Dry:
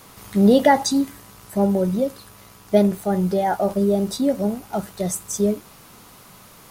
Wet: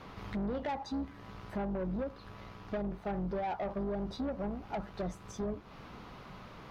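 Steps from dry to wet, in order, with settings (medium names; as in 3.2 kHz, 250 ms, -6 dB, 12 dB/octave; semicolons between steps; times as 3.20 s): octave divider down 2 oct, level -6 dB; dynamic bell 960 Hz, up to +6 dB, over -33 dBFS, Q 0.96; compression 6:1, threshold -29 dBFS, peak gain reduction 21 dB; distance through air 270 m; saturation -31 dBFS, distortion -11 dB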